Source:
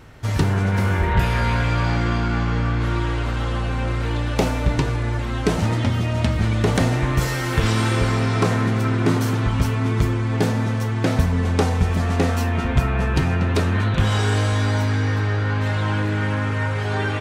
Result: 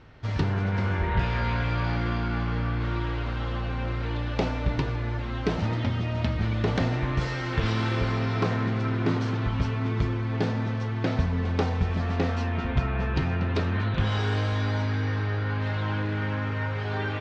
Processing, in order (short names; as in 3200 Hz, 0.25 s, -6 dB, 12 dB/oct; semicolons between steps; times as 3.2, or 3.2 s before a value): LPF 5000 Hz 24 dB/oct; gain -6.5 dB